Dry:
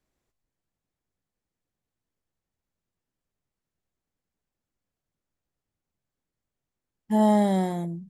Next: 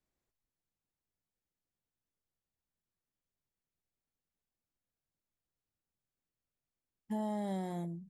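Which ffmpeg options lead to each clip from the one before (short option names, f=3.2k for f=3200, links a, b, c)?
-af "alimiter=limit=-21.5dB:level=0:latency=1:release=127,volume=-8.5dB"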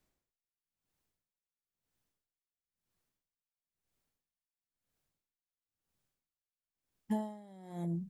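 -af "aeval=exprs='val(0)*pow(10,-27*(0.5-0.5*cos(2*PI*1*n/s))/20)':c=same,volume=8.5dB"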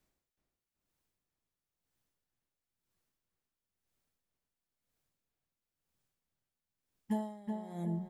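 -filter_complex "[0:a]asplit=2[a][b];[b]adelay=374,lowpass=f=2.5k:p=1,volume=-4.5dB,asplit=2[c][d];[d]adelay=374,lowpass=f=2.5k:p=1,volume=0.5,asplit=2[e][f];[f]adelay=374,lowpass=f=2.5k:p=1,volume=0.5,asplit=2[g][h];[h]adelay=374,lowpass=f=2.5k:p=1,volume=0.5,asplit=2[i][j];[j]adelay=374,lowpass=f=2.5k:p=1,volume=0.5,asplit=2[k][l];[l]adelay=374,lowpass=f=2.5k:p=1,volume=0.5[m];[a][c][e][g][i][k][m]amix=inputs=7:normalize=0"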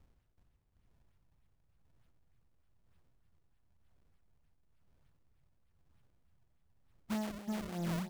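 -filter_complex "[0:a]acrossover=split=150|5100[a][b][c];[a]acompressor=mode=upward:threshold=-57dB:ratio=2.5[d];[d][b][c]amix=inputs=3:normalize=0,acrusher=samples=31:mix=1:aa=0.000001:lfo=1:lforange=49.6:lforate=3.3,asoftclip=type=tanh:threshold=-36.5dB,volume=4dB"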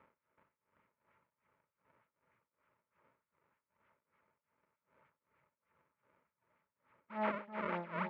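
-af "tremolo=f=2.6:d=0.91,asuperstop=centerf=760:order=4:qfactor=3.8,highpass=320,equalizer=f=320:t=q:w=4:g=-5,equalizer=f=570:t=q:w=4:g=3,equalizer=f=860:t=q:w=4:g=9,equalizer=f=1.3k:t=q:w=4:g=7,equalizer=f=2.2k:t=q:w=4:g=6,lowpass=f=2.4k:w=0.5412,lowpass=f=2.4k:w=1.3066,volume=9dB"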